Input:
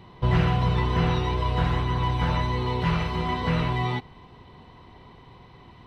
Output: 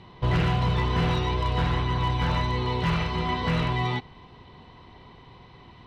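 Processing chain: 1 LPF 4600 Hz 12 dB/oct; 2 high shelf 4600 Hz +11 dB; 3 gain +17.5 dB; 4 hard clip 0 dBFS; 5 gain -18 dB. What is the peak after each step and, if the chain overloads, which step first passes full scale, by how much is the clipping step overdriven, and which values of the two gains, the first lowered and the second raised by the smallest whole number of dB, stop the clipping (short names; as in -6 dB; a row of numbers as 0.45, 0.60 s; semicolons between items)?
-10.0, -9.5, +8.0, 0.0, -18.0 dBFS; step 3, 8.0 dB; step 3 +9.5 dB, step 5 -10 dB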